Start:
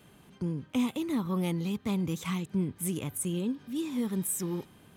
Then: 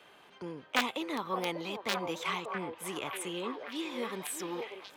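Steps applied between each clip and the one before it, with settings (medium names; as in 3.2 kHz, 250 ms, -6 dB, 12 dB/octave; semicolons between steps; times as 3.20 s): integer overflow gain 20.5 dB; three-band isolator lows -24 dB, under 430 Hz, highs -15 dB, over 4.9 kHz; repeats whose band climbs or falls 591 ms, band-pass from 560 Hz, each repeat 0.7 oct, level -2 dB; trim +5.5 dB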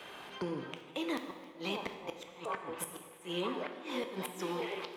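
compression 4:1, threshold -43 dBFS, peak gain reduction 18 dB; inverted gate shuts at -34 dBFS, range -25 dB; plate-style reverb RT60 1.6 s, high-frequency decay 0.8×, DRR 5.5 dB; trim +8.5 dB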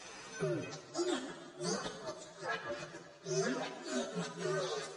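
frequency axis rescaled in octaves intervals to 126%; trim +4 dB; MP3 40 kbps 32 kHz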